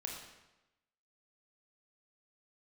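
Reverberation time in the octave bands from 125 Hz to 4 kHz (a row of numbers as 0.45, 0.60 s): 1.0, 1.0, 1.0, 1.0, 0.95, 0.85 s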